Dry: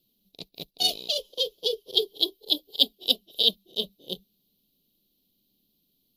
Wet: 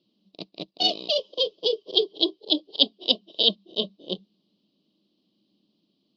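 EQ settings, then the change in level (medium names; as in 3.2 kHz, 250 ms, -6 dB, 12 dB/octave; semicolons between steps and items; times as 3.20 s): distance through air 130 m; cabinet simulation 130–6100 Hz, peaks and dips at 200 Hz +7 dB, 320 Hz +10 dB, 620 Hz +7 dB, 1.1 kHz +9 dB, 2.9 kHz +5 dB, 4.9 kHz +7 dB; peaking EQ 910 Hz +2.5 dB 1.6 oct; +1.0 dB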